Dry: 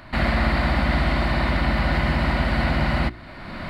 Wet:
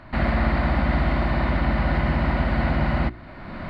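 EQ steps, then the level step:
low-pass filter 1,600 Hz 6 dB per octave
0.0 dB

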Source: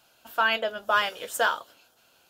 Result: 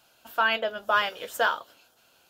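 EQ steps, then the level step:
dynamic equaliser 8,900 Hz, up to −8 dB, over −51 dBFS, Q 1
0.0 dB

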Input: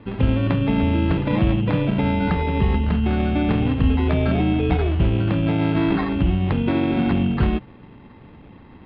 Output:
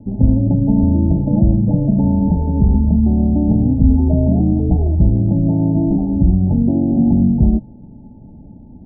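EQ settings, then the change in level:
Chebyshev low-pass with heavy ripple 890 Hz, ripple 9 dB
spectral tilt −3.5 dB per octave
+1.0 dB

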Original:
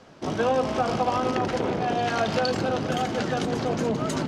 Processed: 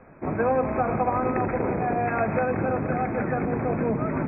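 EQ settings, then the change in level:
linear-phase brick-wall low-pass 2,600 Hz
low-shelf EQ 61 Hz +11 dB
0.0 dB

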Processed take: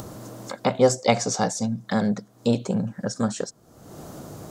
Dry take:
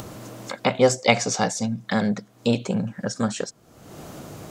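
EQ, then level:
parametric band 2,500 Hz −8.5 dB 1.1 octaves
0.0 dB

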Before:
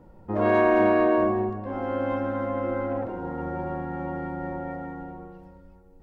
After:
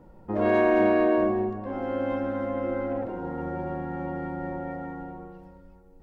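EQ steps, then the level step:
dynamic equaliser 1,100 Hz, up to −5 dB, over −39 dBFS, Q 1.5
parametric band 94 Hz −6.5 dB 0.4 octaves
0.0 dB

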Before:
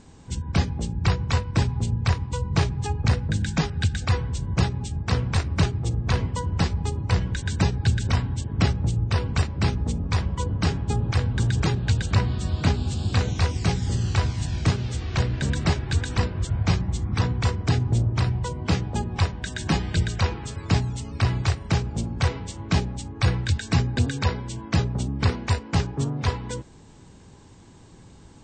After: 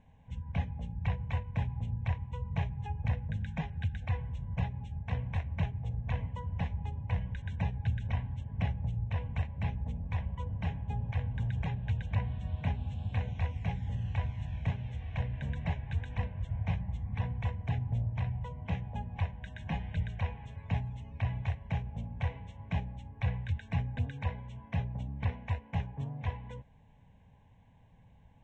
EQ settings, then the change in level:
high-frequency loss of the air 210 metres
phaser with its sweep stopped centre 1,300 Hz, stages 6
−9.0 dB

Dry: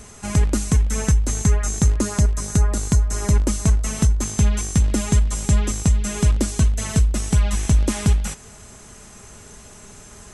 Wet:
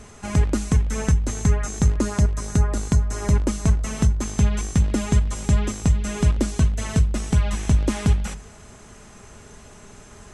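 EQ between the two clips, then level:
low-pass filter 3,600 Hz 6 dB per octave
mains-hum notches 50/100/150/200 Hz
0.0 dB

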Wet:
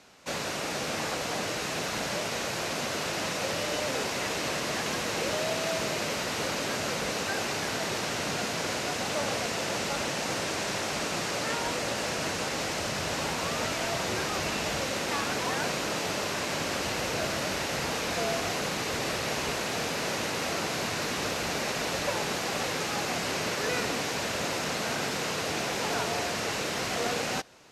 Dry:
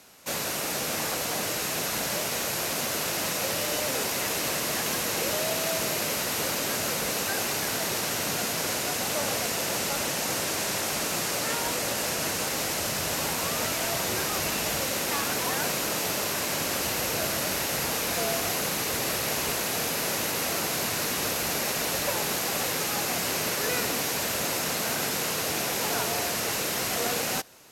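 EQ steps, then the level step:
high-frequency loss of the air 74 metres
0.0 dB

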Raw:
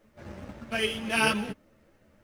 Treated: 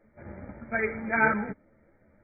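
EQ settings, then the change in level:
notch filter 1,100 Hz, Q 7.3
dynamic equaliser 1,400 Hz, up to +6 dB, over −39 dBFS, Q 0.94
linear-phase brick-wall low-pass 2,400 Hz
0.0 dB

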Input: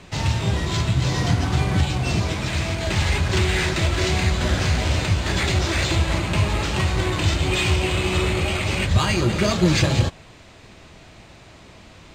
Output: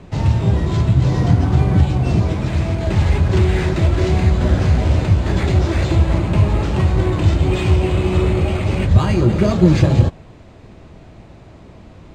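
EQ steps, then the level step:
tilt shelving filter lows +8 dB, about 1,200 Hz
−1.0 dB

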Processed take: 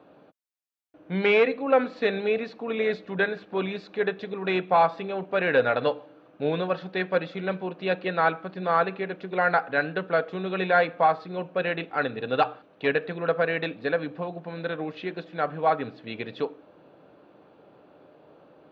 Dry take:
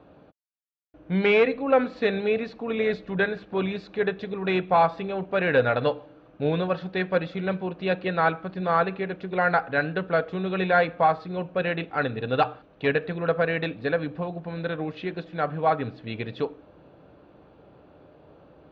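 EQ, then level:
Bessel high-pass filter 220 Hz, order 2
0.0 dB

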